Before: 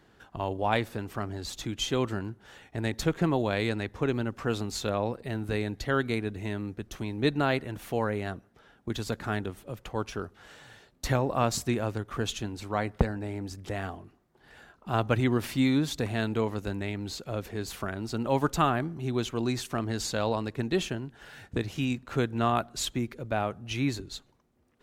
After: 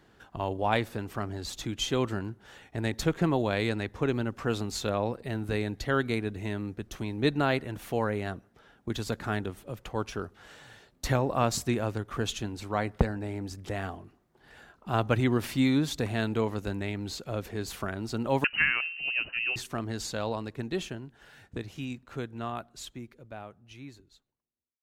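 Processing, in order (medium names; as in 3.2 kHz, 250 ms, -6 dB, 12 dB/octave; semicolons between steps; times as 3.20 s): fade out at the end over 6.94 s; 18.44–19.56 s: frequency inversion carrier 2.9 kHz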